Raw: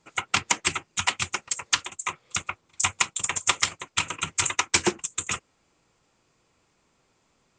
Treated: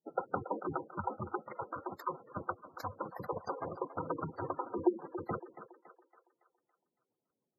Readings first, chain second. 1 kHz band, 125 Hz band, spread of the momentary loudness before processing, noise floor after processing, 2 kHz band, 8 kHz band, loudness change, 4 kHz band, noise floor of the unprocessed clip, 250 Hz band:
−7.0 dB, −5.5 dB, 8 LU, below −85 dBFS, −23.0 dB, below −40 dB, −13.0 dB, −38.5 dB, −69 dBFS, −1.5 dB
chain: samples in bit-reversed order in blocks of 16 samples
downward expander −52 dBFS
dynamic equaliser 510 Hz, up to +7 dB, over −56 dBFS, Q 6.5
brickwall limiter −12.5 dBFS, peak gain reduction 9.5 dB
downward compressor 5 to 1, threshold −30 dBFS, peak gain reduction 9.5 dB
resonant band-pass 390 Hz, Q 0.63
on a send: feedback echo with a high-pass in the loop 280 ms, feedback 46%, high-pass 290 Hz, level −12 dB
on the sum: gate on every frequency bin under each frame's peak −10 dB strong
level +10.5 dB

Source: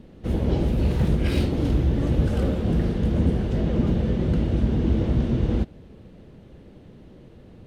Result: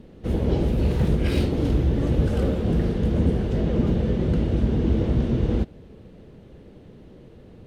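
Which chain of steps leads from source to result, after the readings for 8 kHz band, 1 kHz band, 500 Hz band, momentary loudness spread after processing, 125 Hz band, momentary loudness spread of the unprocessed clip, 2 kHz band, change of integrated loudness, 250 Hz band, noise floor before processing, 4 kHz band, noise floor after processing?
can't be measured, 0.0 dB, +2.0 dB, 2 LU, 0.0 dB, 2 LU, 0.0 dB, +0.5 dB, +0.5 dB, −48 dBFS, 0.0 dB, −47 dBFS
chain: parametric band 440 Hz +3.5 dB 0.42 octaves

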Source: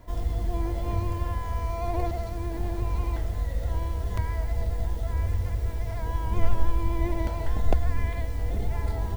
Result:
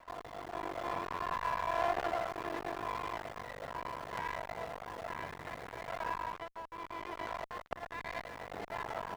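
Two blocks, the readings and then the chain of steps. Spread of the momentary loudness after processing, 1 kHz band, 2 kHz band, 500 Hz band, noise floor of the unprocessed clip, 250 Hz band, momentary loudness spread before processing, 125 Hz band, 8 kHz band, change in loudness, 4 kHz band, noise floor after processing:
10 LU, +0.5 dB, +1.5 dB, −4.0 dB, −32 dBFS, −12.0 dB, 3 LU, −25.5 dB, can't be measured, −9.5 dB, −1.5 dB, −56 dBFS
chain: single-tap delay 106 ms −19.5 dB
downward compressor 2.5 to 1, threshold −24 dBFS, peak gain reduction 8 dB
high-shelf EQ 2,500 Hz −7.5 dB
half-wave rectification
spectral tilt −3.5 dB per octave
automatic gain control
high-pass filter 1,300 Hz 12 dB per octave
windowed peak hold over 5 samples
level +11 dB

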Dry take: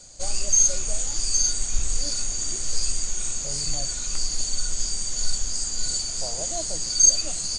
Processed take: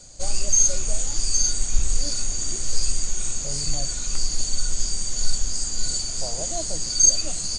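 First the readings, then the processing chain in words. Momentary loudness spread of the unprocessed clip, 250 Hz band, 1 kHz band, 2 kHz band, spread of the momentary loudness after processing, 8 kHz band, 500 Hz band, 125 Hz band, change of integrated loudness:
10 LU, +3.0 dB, +1.0 dB, 0.0 dB, 10 LU, 0.0 dB, +1.5 dB, +4.5 dB, 0.0 dB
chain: low-shelf EQ 390 Hz +4.5 dB

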